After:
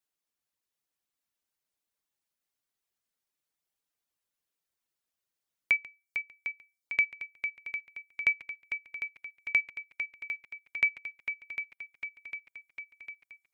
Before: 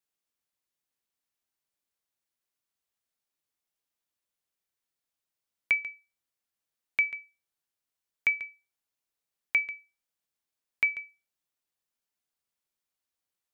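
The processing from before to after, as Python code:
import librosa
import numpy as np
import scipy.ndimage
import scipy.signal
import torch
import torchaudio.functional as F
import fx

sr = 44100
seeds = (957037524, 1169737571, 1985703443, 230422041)

y = fx.echo_swing(x, sr, ms=752, ratio=1.5, feedback_pct=62, wet_db=-8.0)
y = fx.dereverb_blind(y, sr, rt60_s=0.54)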